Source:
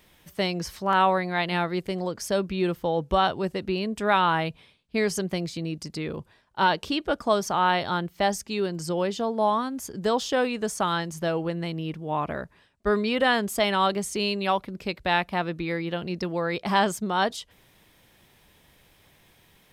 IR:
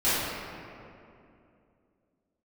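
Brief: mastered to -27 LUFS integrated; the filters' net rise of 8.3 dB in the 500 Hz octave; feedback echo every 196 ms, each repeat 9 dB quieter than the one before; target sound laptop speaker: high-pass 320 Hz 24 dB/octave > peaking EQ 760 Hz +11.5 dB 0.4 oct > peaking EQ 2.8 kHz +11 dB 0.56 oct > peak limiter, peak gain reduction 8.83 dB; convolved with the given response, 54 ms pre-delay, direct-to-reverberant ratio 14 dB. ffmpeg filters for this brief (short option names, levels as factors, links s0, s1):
-filter_complex "[0:a]equalizer=f=500:t=o:g=7.5,aecho=1:1:196|392|588|784:0.355|0.124|0.0435|0.0152,asplit=2[s0][s1];[1:a]atrim=start_sample=2205,adelay=54[s2];[s1][s2]afir=irnorm=-1:irlink=0,volume=0.0335[s3];[s0][s3]amix=inputs=2:normalize=0,highpass=f=320:w=0.5412,highpass=f=320:w=1.3066,equalizer=f=760:t=o:w=0.4:g=11.5,equalizer=f=2800:t=o:w=0.56:g=11,volume=0.473,alimiter=limit=0.168:level=0:latency=1"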